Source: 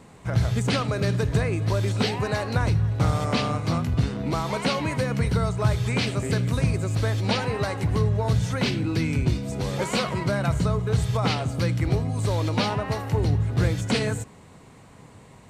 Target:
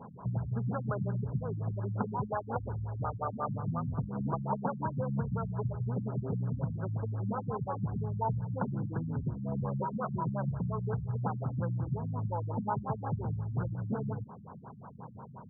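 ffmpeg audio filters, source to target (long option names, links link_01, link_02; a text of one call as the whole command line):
ffmpeg -i in.wav -filter_complex "[0:a]asettb=1/sr,asplit=3[link_01][link_02][link_03];[link_01]atrim=end=2.294[link_04];[link_02]atrim=start=2.29:end=3.49,asetpts=PTS-STARTPTS,afade=type=in:duration=0.004:curve=qsin,afade=type=out:start_time=1.196:duration=0.004:curve=qsin,equalizer=frequency=160:width=1.3:gain=-13.5[link_05];[link_03]atrim=start=3.486[link_06];[link_04][link_05]acrossfade=duration=0.004:curve1=hsin:curve2=qsin[link_07];[link_07][link_06]acrossfade=duration=0.004:curve1=qsin:curve2=hsin,acompressor=threshold=-31dB:ratio=6,crystalizer=i=6:c=0,highpass=100,equalizer=frequency=130:width_type=q:width=4:gain=4,equalizer=frequency=210:width_type=q:width=4:gain=4,equalizer=frequency=310:width_type=q:width=4:gain=-9,equalizer=frequency=900:width_type=q:width=4:gain=7,equalizer=frequency=1700:width_type=q:width=4:gain=-8,lowpass=frequency=2300:width=0.5412,lowpass=frequency=2300:width=1.3066,crystalizer=i=5.5:c=0,afftfilt=real='re*lt(b*sr/1024,230*pow(1700/230,0.5+0.5*sin(2*PI*5.6*pts/sr)))':imag='im*lt(b*sr/1024,230*pow(1700/230,0.5+0.5*sin(2*PI*5.6*pts/sr)))':win_size=1024:overlap=0.75" out.wav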